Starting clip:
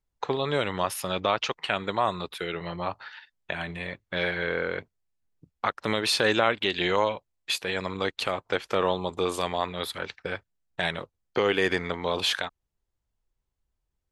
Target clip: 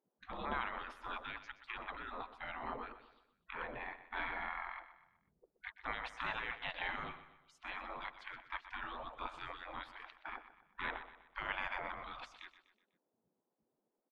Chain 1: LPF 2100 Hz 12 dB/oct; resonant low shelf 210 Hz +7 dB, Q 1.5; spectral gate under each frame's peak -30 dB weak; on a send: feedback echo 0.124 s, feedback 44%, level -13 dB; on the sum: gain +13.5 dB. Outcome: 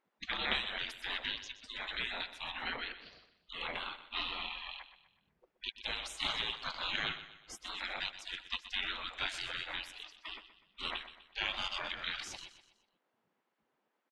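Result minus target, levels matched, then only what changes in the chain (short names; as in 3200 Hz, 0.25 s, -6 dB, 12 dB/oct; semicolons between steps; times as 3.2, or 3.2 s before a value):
500 Hz band -5.5 dB
change: LPF 540 Hz 12 dB/oct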